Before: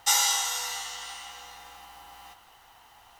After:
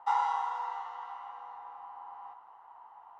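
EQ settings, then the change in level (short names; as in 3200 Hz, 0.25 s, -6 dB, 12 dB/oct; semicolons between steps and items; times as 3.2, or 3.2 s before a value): HPF 690 Hz 6 dB/oct; synth low-pass 980 Hz, resonance Q 4.9; -4.0 dB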